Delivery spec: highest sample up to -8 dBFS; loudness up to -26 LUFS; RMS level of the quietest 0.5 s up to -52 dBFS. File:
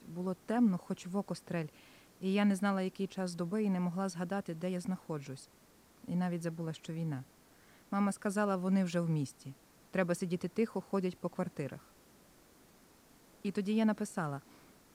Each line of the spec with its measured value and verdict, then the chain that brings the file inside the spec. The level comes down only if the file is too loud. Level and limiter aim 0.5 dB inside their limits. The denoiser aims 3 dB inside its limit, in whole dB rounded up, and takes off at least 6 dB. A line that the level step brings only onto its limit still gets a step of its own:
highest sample -18.0 dBFS: pass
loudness -36.0 LUFS: pass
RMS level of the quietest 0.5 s -63 dBFS: pass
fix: none needed

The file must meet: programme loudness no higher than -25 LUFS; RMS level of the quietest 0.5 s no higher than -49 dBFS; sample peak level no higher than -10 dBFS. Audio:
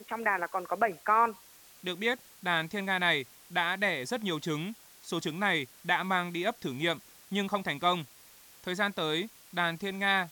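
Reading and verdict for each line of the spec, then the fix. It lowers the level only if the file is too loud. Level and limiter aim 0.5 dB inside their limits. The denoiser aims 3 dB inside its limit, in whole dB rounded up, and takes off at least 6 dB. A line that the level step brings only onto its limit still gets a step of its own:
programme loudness -30.5 LUFS: pass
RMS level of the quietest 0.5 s -56 dBFS: pass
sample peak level -13.0 dBFS: pass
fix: none needed

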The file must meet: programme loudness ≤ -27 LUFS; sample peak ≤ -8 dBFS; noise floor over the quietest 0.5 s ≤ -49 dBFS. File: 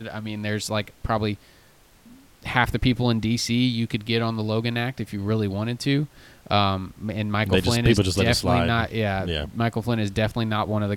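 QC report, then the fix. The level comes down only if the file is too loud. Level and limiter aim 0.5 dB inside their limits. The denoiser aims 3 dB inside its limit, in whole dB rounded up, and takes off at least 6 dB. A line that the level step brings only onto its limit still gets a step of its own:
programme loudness -24.0 LUFS: fail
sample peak -4.5 dBFS: fail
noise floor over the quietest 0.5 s -54 dBFS: pass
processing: trim -3.5 dB; peak limiter -8.5 dBFS

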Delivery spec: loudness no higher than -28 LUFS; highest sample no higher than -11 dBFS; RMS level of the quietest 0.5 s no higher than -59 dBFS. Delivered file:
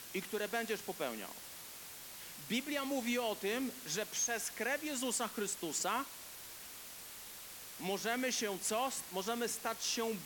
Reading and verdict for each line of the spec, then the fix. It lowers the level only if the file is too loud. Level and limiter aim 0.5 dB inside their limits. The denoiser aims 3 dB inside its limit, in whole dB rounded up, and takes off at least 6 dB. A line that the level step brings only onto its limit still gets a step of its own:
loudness -38.0 LUFS: pass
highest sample -21.5 dBFS: pass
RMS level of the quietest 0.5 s -50 dBFS: fail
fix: noise reduction 12 dB, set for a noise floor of -50 dBFS

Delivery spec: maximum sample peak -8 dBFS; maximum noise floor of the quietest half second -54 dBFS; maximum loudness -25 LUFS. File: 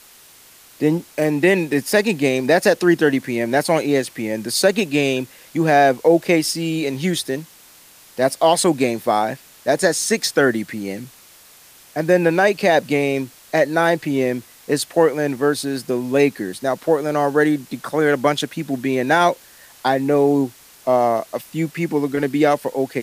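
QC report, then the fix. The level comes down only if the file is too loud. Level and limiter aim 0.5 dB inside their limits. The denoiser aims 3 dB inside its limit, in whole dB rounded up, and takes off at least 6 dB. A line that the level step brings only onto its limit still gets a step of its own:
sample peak -3.5 dBFS: fail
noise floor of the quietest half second -47 dBFS: fail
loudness -19.0 LUFS: fail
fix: noise reduction 6 dB, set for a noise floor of -47 dBFS; trim -6.5 dB

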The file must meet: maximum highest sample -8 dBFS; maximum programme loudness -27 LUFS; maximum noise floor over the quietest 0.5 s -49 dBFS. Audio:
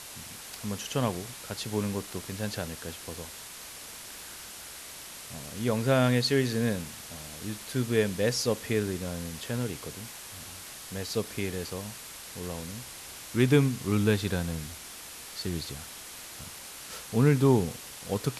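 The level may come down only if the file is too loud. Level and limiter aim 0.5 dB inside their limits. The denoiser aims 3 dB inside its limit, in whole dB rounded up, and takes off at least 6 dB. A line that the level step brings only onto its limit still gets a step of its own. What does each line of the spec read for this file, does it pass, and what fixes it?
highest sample -10.0 dBFS: pass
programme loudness -30.5 LUFS: pass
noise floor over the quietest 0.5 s -44 dBFS: fail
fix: noise reduction 8 dB, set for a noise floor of -44 dBFS

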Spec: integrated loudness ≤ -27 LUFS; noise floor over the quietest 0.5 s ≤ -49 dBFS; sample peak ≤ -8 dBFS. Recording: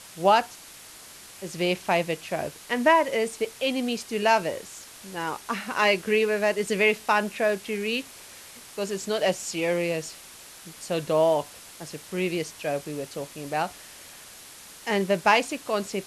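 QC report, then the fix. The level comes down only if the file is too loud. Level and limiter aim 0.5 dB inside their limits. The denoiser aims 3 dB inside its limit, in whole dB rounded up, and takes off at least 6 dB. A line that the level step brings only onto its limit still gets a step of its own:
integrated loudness -25.5 LUFS: fail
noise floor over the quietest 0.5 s -46 dBFS: fail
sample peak -7.0 dBFS: fail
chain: noise reduction 6 dB, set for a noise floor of -46 dBFS; trim -2 dB

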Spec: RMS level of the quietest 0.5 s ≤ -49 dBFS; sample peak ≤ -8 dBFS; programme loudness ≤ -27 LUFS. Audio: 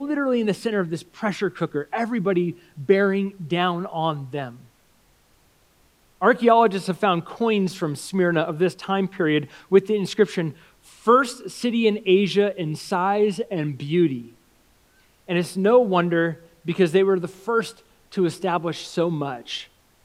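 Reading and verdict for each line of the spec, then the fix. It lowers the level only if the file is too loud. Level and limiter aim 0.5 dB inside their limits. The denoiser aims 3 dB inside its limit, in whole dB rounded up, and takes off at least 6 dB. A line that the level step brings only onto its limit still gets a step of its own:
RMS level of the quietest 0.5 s -59 dBFS: pass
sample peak -4.5 dBFS: fail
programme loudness -22.5 LUFS: fail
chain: trim -5 dB

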